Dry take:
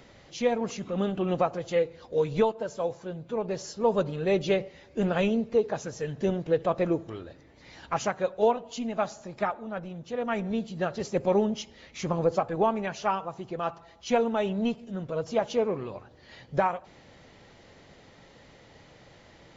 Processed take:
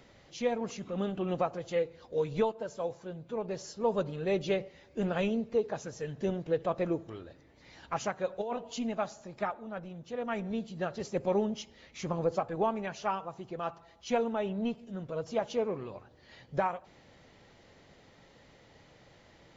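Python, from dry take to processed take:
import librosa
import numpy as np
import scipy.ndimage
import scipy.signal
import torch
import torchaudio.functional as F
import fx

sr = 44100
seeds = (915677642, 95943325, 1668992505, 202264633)

y = fx.over_compress(x, sr, threshold_db=-27.0, ratio=-1.0, at=(8.29, 8.95))
y = fx.high_shelf(y, sr, hz=fx.line((14.33, 4000.0), (14.74, 5900.0)), db=-9.0, at=(14.33, 14.74), fade=0.02)
y = y * librosa.db_to_amplitude(-5.0)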